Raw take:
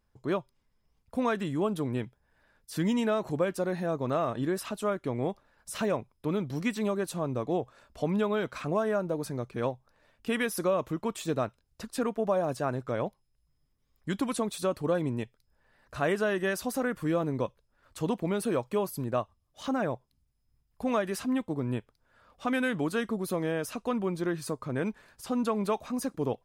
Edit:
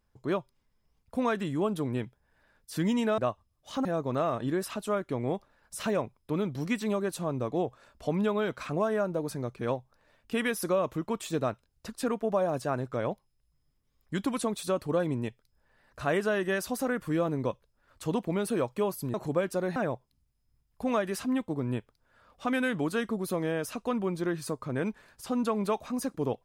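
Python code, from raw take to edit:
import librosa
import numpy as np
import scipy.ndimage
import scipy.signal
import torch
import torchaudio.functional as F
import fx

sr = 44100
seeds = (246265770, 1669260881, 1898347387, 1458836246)

y = fx.edit(x, sr, fx.swap(start_s=3.18, length_s=0.62, other_s=19.09, other_length_s=0.67), tone=tone)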